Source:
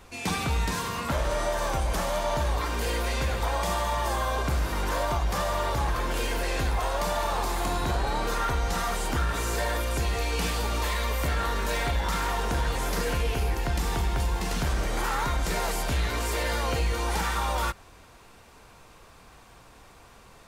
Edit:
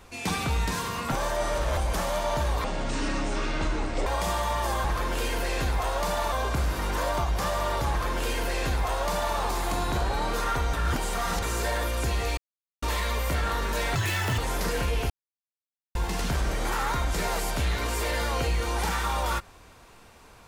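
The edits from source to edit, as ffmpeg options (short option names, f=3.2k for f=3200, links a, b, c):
-filter_complex "[0:a]asplit=15[a][b][c][d][e][f][g][h][i][j][k][l][m][n][o];[a]atrim=end=1.122[p];[b]atrim=start=1.118:end=1.772,asetpts=PTS-STARTPTS,areverse[q];[c]atrim=start=1.768:end=2.644[r];[d]atrim=start=2.64:end=3.48,asetpts=PTS-STARTPTS,asetrate=26019,aresample=44100,atrim=end_sample=62786,asetpts=PTS-STARTPTS[s];[e]atrim=start=3.476:end=4.262[t];[f]atrim=start=5.828:end=7.312[u];[g]atrim=start=4.258:end=8.672[v];[h]atrim=start=8.668:end=9.362,asetpts=PTS-STARTPTS,areverse[w];[i]atrim=start=9.358:end=10.31,asetpts=PTS-STARTPTS,afade=t=out:st=0.948:d=0.004:c=hsin[x];[j]atrim=start=10.31:end=10.76,asetpts=PTS-STARTPTS,volume=0[y];[k]atrim=start=10.76:end=11.894,asetpts=PTS-STARTPTS,afade=t=in:d=0.004:c=hsin[z];[l]atrim=start=11.89:end=12.7,asetpts=PTS-STARTPTS,asetrate=83790,aresample=44100[aa];[m]atrim=start=12.696:end=13.42,asetpts=PTS-STARTPTS,afade=t=out:st=0.72:d=0.004:c=hsin[ab];[n]atrim=start=13.42:end=14.27,asetpts=PTS-STARTPTS,volume=0[ac];[o]atrim=start=14.27,asetpts=PTS-STARTPTS,afade=t=in:d=0.004:c=hsin[ad];[p][q]acrossfade=d=0.004:c1=hsin:c2=hsin[ae];[ae][r]acrossfade=d=0.004:c1=hsin:c2=hsin[af];[af][s]acrossfade=d=0.004:c1=hsin:c2=hsin[ag];[ag][t]acrossfade=d=0.004:c1=hsin:c2=hsin[ah];[ah][u]acrossfade=d=0.004:c1=hsin:c2=hsin[ai];[ai][v]acrossfade=d=0.004:c1=hsin:c2=hsin[aj];[aj][w]acrossfade=d=0.004:c1=hsin:c2=hsin[ak];[x][y][z]concat=n=3:v=0:a=1[al];[ak][al]acrossfade=d=0.004:c1=hsin:c2=hsin[am];[am][aa]acrossfade=d=0.004:c1=hsin:c2=hsin[an];[ab][ac][ad]concat=n=3:v=0:a=1[ao];[an][ao]acrossfade=d=0.004:c1=hsin:c2=hsin"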